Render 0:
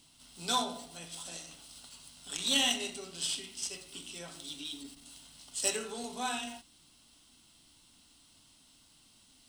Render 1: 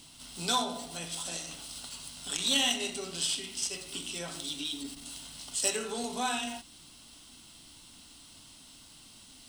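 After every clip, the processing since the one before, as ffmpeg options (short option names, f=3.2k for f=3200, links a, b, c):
-af "acompressor=threshold=-47dB:ratio=1.5,volume=9dB"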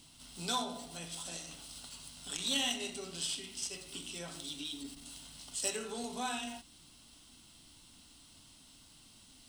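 -af "lowshelf=f=210:g=4,volume=-6dB"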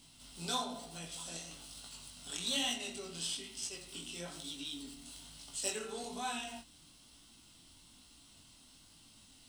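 -af "flanger=delay=17.5:depth=7:speed=1.1,volume=1.5dB"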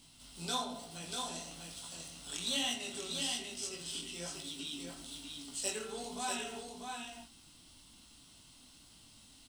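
-af "aecho=1:1:643:0.596"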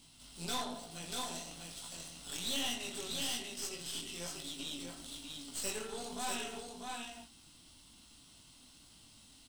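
-af "aeval=exprs='(tanh(63.1*val(0)+0.75)-tanh(0.75))/63.1':c=same,volume=4dB"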